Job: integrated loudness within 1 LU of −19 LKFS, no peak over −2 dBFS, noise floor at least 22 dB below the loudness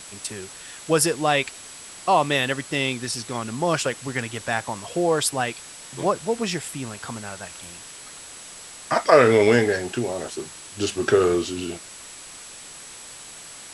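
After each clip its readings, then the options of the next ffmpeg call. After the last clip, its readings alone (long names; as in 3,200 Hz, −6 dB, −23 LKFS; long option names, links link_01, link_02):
interfering tone 7,800 Hz; level of the tone −44 dBFS; background noise floor −41 dBFS; target noise floor −45 dBFS; integrated loudness −23.0 LKFS; sample peak −1.5 dBFS; target loudness −19.0 LKFS
→ -af "bandreject=frequency=7800:width=30"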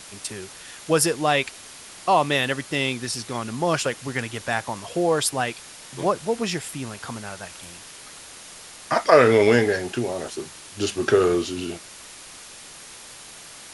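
interfering tone none found; background noise floor −43 dBFS; target noise floor −45 dBFS
→ -af "afftdn=noise_reduction=6:noise_floor=-43"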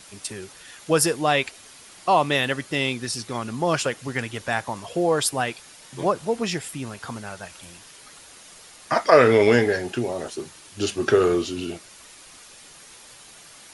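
background noise floor −47 dBFS; integrated loudness −23.0 LKFS; sample peak −1.5 dBFS; target loudness −19.0 LKFS
→ -af "volume=4dB,alimiter=limit=-2dB:level=0:latency=1"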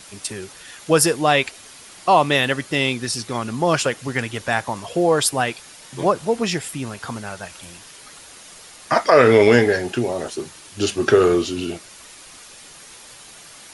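integrated loudness −19.5 LKFS; sample peak −2.0 dBFS; background noise floor −43 dBFS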